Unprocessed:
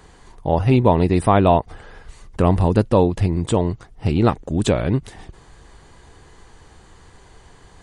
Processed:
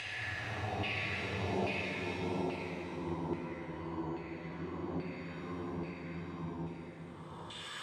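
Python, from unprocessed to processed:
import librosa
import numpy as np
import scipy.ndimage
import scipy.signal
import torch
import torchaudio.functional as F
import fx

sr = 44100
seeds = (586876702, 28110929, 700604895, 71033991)

y = fx.paulstretch(x, sr, seeds[0], factor=29.0, window_s=0.1, from_s=3.2)
y = fx.filter_lfo_bandpass(y, sr, shape='saw_down', hz=1.2, low_hz=750.0, high_hz=2800.0, q=2.4)
y = fx.rev_shimmer(y, sr, seeds[1], rt60_s=1.8, semitones=7, shimmer_db=-8, drr_db=3.5)
y = y * 10.0 ** (1.0 / 20.0)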